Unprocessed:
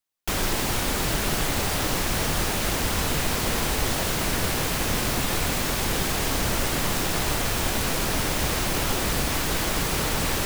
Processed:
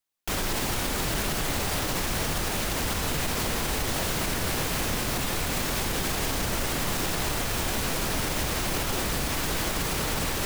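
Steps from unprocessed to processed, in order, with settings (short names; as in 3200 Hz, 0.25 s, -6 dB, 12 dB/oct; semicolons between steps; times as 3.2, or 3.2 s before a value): limiter -18 dBFS, peak gain reduction 6 dB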